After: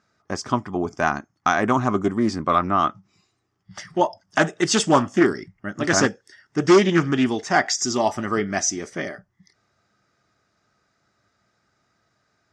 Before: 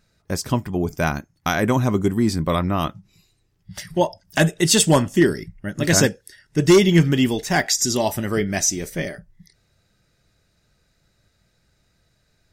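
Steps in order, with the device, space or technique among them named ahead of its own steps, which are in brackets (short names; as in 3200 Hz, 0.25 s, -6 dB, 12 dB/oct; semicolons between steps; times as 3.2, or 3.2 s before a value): full-range speaker at full volume (Doppler distortion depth 0.25 ms; speaker cabinet 150–6500 Hz, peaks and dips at 160 Hz -8 dB, 510 Hz -5 dB, 750 Hz +4 dB, 1200 Hz +9 dB, 2600 Hz -5 dB, 4000 Hz -9 dB)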